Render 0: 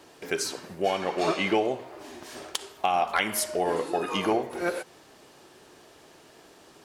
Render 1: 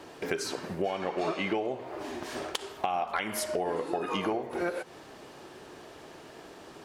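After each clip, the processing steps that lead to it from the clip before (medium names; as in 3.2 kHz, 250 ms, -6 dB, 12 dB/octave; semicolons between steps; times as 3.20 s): treble shelf 3.9 kHz -8.5 dB; compression 4:1, threshold -35 dBFS, peak gain reduction 13 dB; trim +6 dB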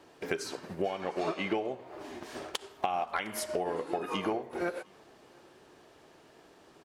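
delay 708 ms -22 dB; upward expansion 1.5:1, over -45 dBFS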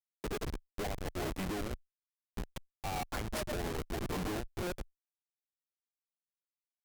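Schmitt trigger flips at -33 dBFS; Chebyshev shaper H 7 -9 dB, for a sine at -30 dBFS; vibrato 0.44 Hz 92 cents; trim -1 dB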